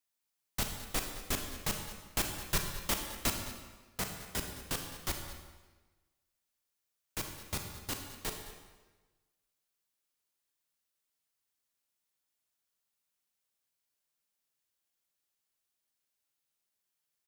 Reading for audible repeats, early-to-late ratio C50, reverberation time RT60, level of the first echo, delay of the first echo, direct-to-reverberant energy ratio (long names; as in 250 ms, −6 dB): 1, 5.0 dB, 1.3 s, −16.0 dB, 212 ms, 3.5 dB